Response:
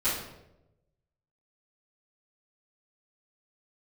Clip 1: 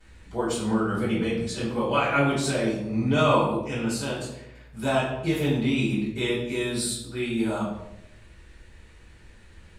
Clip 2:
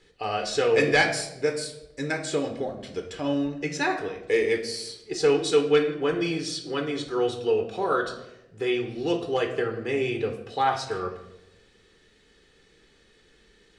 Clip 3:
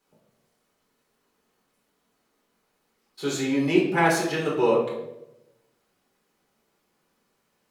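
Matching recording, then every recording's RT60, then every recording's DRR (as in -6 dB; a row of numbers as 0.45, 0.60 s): 1; 0.90, 0.90, 0.90 s; -15.0, 4.0, -5.0 dB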